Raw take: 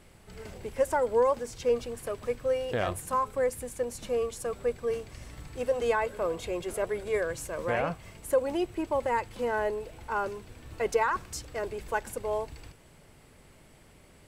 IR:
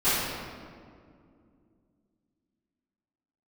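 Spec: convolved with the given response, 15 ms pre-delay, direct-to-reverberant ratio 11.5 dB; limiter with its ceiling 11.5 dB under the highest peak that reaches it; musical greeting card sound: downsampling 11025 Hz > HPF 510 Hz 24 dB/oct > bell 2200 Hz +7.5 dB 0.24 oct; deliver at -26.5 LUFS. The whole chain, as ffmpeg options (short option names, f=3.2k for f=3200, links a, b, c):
-filter_complex "[0:a]alimiter=level_in=1.5dB:limit=-24dB:level=0:latency=1,volume=-1.5dB,asplit=2[a][b];[1:a]atrim=start_sample=2205,adelay=15[c];[b][c]afir=irnorm=-1:irlink=0,volume=-27dB[d];[a][d]amix=inputs=2:normalize=0,aresample=11025,aresample=44100,highpass=f=510:w=0.5412,highpass=f=510:w=1.3066,equalizer=f=2.2k:t=o:w=0.24:g=7.5,volume=11.5dB"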